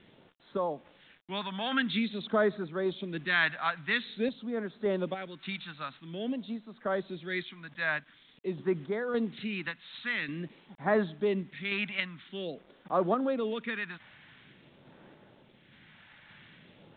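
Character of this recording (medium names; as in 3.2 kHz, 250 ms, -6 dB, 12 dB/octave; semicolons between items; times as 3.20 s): phasing stages 2, 0.48 Hz, lowest notch 390–2700 Hz; a quantiser's noise floor 10-bit, dither none; random-step tremolo; µ-law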